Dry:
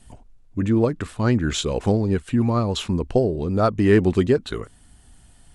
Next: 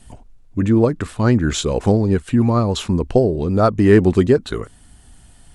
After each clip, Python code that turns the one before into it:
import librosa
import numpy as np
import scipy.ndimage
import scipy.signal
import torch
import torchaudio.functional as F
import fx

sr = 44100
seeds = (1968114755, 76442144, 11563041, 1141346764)

y = fx.dynamic_eq(x, sr, hz=2900.0, q=1.2, threshold_db=-41.0, ratio=4.0, max_db=-4)
y = y * 10.0 ** (4.5 / 20.0)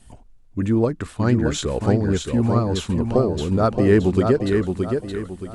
y = fx.echo_feedback(x, sr, ms=622, feedback_pct=36, wet_db=-5.0)
y = y * 10.0 ** (-4.5 / 20.0)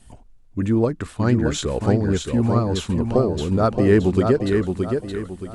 y = x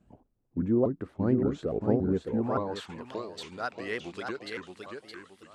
y = fx.filter_sweep_bandpass(x, sr, from_hz=330.0, to_hz=2900.0, start_s=2.17, end_s=3.17, q=0.79)
y = fx.vibrato_shape(y, sr, shape='saw_up', rate_hz=3.5, depth_cents=250.0)
y = y * 10.0 ** (-4.5 / 20.0)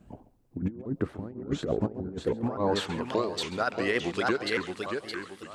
y = fx.over_compress(x, sr, threshold_db=-33.0, ratio=-0.5)
y = y + 10.0 ** (-17.5 / 20.0) * np.pad(y, (int(135 * sr / 1000.0), 0))[:len(y)]
y = y * 10.0 ** (4.5 / 20.0)